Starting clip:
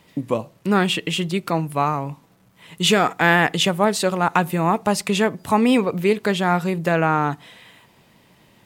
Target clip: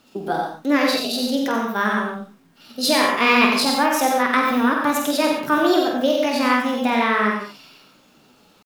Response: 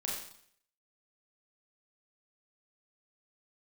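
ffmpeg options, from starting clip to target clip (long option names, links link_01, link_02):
-filter_complex "[0:a]flanger=delay=4.6:depth=7:regen=57:speed=1.5:shape=sinusoidal,asetrate=62367,aresample=44100,atempo=0.707107,asplit=2[link_01][link_02];[1:a]atrim=start_sample=2205,afade=type=out:start_time=0.23:duration=0.01,atrim=end_sample=10584,adelay=48[link_03];[link_02][link_03]afir=irnorm=-1:irlink=0,volume=-2.5dB[link_04];[link_01][link_04]amix=inputs=2:normalize=0,volume=1.5dB"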